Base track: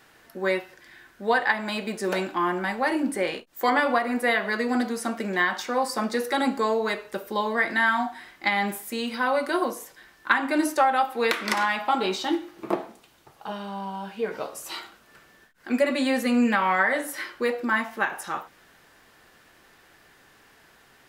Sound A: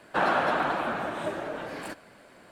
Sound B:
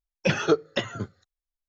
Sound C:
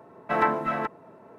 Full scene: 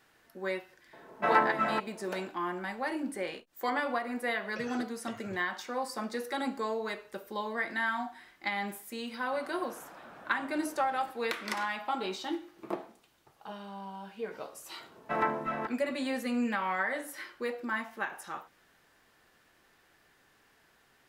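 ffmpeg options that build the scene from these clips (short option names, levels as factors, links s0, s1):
-filter_complex "[3:a]asplit=2[s0][s1];[0:a]volume=0.335[s2];[s0]lowshelf=f=150:g=-11.5[s3];[2:a]acompressor=threshold=0.0501:ratio=6:attack=3.2:release=140:knee=1:detection=peak[s4];[1:a]acompressor=threshold=0.0112:ratio=6:attack=3.2:release=140:knee=1:detection=peak[s5];[s1]aecho=1:1:77:0.178[s6];[s3]atrim=end=1.38,asetpts=PTS-STARTPTS,volume=0.841,afade=t=in:d=0.004:c=hsin,afade=t=out:st=1.376:d=0.004:c=hsin,adelay=930[s7];[s4]atrim=end=1.68,asetpts=PTS-STARTPTS,volume=0.188,afade=t=in:d=0.004:c=hsin,afade=t=out:st=1.676:d=0.004:c=hsin,adelay=4310[s8];[s5]atrim=end=2.51,asetpts=PTS-STARTPTS,volume=0.376,afade=t=in:d=0.004:c=hsin,afade=t=out:st=2.506:d=0.004:c=hsin,adelay=9180[s9];[s6]atrim=end=1.38,asetpts=PTS-STARTPTS,volume=0.473,afade=t=in:d=0.004:c=hsin,afade=t=out:st=1.376:d=0.004:c=hsin,adelay=14800[s10];[s2][s7][s8][s9][s10]amix=inputs=5:normalize=0"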